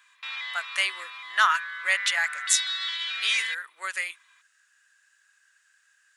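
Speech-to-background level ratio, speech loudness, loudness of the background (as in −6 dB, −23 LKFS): 4.5 dB, −26.5 LKFS, −31.0 LKFS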